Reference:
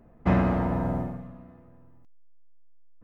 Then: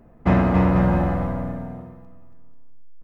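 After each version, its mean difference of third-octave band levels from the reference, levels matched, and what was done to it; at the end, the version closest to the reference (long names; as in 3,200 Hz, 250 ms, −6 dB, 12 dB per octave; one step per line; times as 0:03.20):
5.0 dB: on a send: bouncing-ball delay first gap 280 ms, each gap 0.75×, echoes 5
on the sum: level +4.5 dB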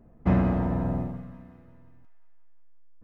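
1.5 dB: low-shelf EQ 480 Hz +7 dB
delay with a high-pass on its return 177 ms, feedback 69%, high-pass 1,800 Hz, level −12 dB
level −5.5 dB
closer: second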